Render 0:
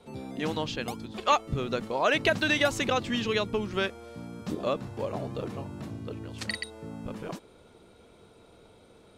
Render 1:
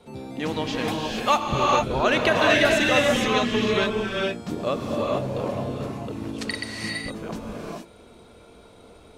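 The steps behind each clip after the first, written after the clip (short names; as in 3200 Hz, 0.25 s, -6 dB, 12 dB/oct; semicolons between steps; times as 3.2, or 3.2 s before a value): non-linear reverb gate 0.48 s rising, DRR -2 dB; gain +2.5 dB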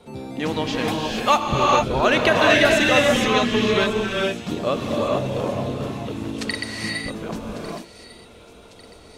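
thin delay 1.149 s, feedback 53%, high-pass 3100 Hz, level -14 dB; gain +3 dB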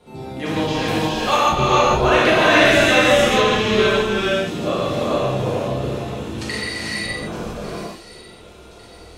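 non-linear reverb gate 0.2 s flat, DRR -7 dB; gain -4.5 dB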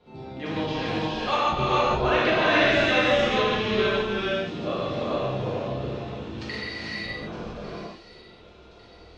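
LPF 5100 Hz 24 dB/oct; gain -7 dB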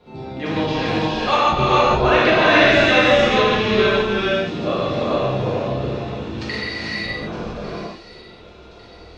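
notch 3100 Hz, Q 21; gain +7 dB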